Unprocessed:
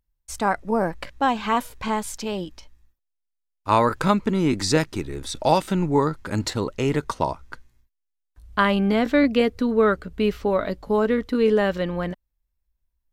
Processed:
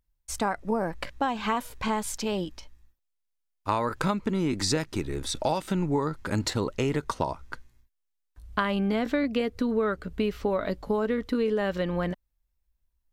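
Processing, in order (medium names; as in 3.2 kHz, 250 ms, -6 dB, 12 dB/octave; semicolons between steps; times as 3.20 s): compression, threshold -23 dBFS, peak gain reduction 10.5 dB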